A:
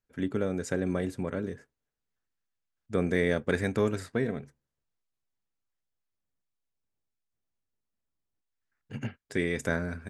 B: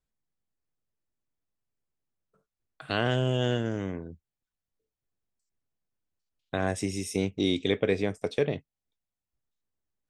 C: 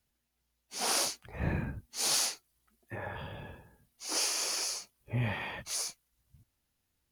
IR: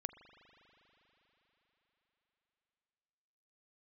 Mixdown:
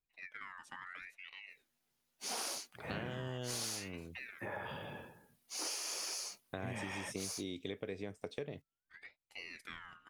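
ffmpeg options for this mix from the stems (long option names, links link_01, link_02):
-filter_complex "[0:a]bandreject=frequency=2300:width=10,aeval=exprs='val(0)*sin(2*PI*1900*n/s+1900*0.3/0.75*sin(2*PI*0.75*n/s))':channel_layout=same,volume=-17dB[link_01];[1:a]volume=-8.5dB[link_02];[2:a]highpass=160,adelay=1500,volume=0dB[link_03];[link_01][link_02][link_03]amix=inputs=3:normalize=0,acompressor=threshold=-38dB:ratio=6"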